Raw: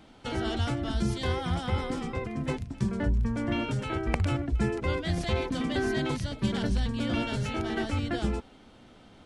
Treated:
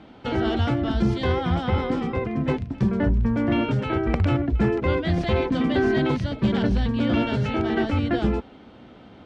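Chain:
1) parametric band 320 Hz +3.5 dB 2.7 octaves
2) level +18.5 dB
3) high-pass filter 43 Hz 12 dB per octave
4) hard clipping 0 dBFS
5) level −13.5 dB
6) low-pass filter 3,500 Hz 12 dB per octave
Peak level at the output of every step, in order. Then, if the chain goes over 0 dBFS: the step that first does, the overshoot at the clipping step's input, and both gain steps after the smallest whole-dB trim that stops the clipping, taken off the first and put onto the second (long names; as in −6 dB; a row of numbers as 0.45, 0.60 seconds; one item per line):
−10.5, +8.0, +8.0, 0.0, −13.5, −13.0 dBFS
step 2, 8.0 dB
step 2 +10.5 dB, step 5 −5.5 dB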